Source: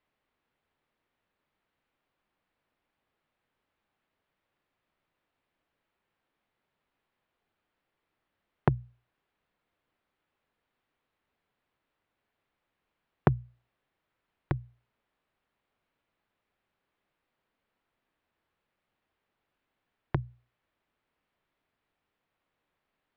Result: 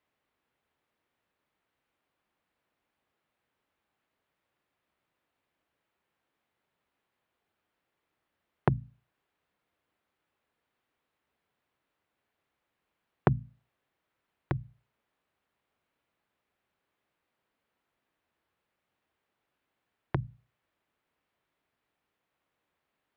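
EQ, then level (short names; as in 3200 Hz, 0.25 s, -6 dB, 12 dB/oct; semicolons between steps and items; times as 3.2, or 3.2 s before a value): HPF 45 Hz; notches 50/100/150/200/250 Hz; 0.0 dB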